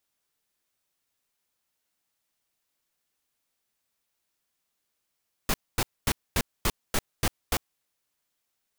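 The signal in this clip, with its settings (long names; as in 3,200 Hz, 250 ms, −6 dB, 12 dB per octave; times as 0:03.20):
noise bursts pink, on 0.05 s, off 0.24 s, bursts 8, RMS −24 dBFS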